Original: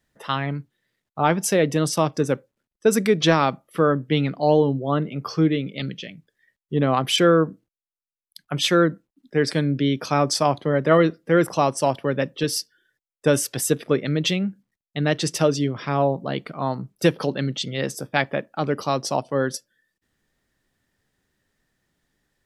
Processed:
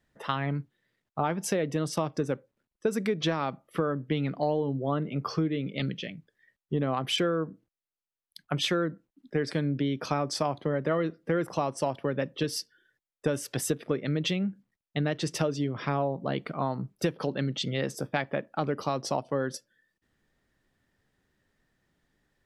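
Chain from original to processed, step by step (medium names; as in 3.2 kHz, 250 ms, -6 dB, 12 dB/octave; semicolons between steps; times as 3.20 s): treble shelf 4.5 kHz -8.5 dB; compression 5:1, threshold -25 dBFS, peak gain reduction 12.5 dB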